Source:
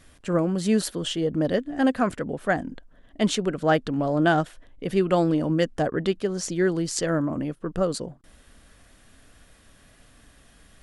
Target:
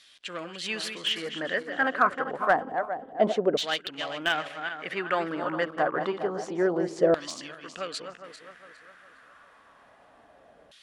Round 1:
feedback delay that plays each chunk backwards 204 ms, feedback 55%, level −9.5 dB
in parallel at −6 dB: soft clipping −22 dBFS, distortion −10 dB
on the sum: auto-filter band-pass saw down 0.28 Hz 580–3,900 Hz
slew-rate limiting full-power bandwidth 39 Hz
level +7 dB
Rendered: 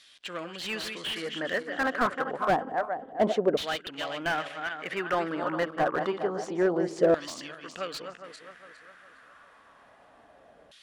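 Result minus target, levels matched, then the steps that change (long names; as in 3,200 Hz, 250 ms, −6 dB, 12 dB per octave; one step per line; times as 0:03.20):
slew-rate limiting: distortion +18 dB
change: slew-rate limiting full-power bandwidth 125.5 Hz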